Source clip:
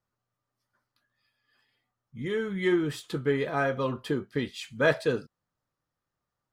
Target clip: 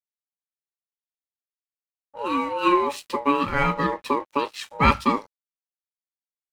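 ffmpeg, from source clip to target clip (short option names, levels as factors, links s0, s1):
-af "aeval=exprs='sgn(val(0))*max(abs(val(0))-0.00224,0)':c=same,aeval=exprs='val(0)*sin(2*PI*710*n/s)':c=same,volume=2.66"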